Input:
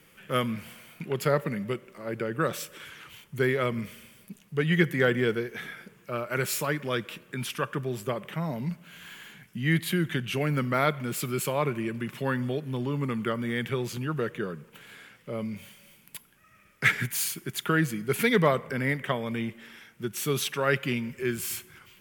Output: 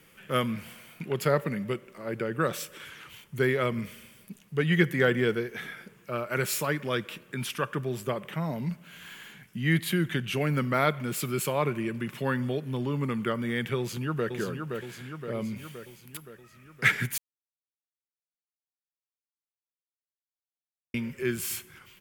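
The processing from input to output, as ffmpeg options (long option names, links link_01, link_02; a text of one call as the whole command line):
ffmpeg -i in.wav -filter_complex "[0:a]asplit=2[link_01][link_02];[link_02]afade=type=in:start_time=13.78:duration=0.01,afade=type=out:start_time=14.33:duration=0.01,aecho=0:1:520|1040|1560|2080|2600|3120|3640|4160:0.562341|0.337405|0.202443|0.121466|0.0728794|0.0437277|0.0262366|0.015742[link_03];[link_01][link_03]amix=inputs=2:normalize=0,asplit=3[link_04][link_05][link_06];[link_04]atrim=end=17.18,asetpts=PTS-STARTPTS,afade=type=out:start_time=17.176:duration=0.004:curve=hsin[link_07];[link_05]atrim=start=17.18:end=20.94,asetpts=PTS-STARTPTS,volume=0[link_08];[link_06]atrim=start=20.94,asetpts=PTS-STARTPTS,afade=type=in:duration=0.004:curve=hsin[link_09];[link_07][link_08][link_09]concat=n=3:v=0:a=1" out.wav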